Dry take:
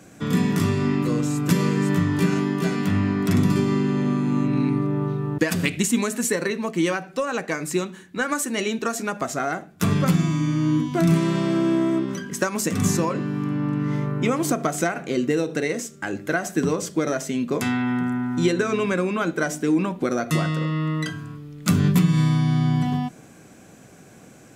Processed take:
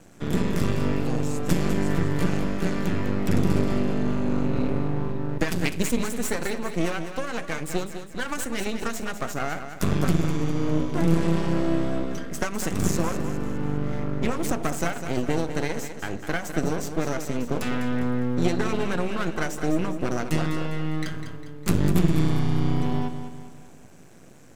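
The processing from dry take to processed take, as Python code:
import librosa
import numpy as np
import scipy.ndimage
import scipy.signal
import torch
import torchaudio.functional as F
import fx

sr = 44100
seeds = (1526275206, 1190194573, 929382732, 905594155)

p1 = fx.low_shelf(x, sr, hz=200.0, db=4.5)
p2 = np.maximum(p1, 0.0)
p3 = p2 + fx.echo_feedback(p2, sr, ms=202, feedback_pct=45, wet_db=-9.5, dry=0)
y = p3 * librosa.db_to_amplitude(-1.5)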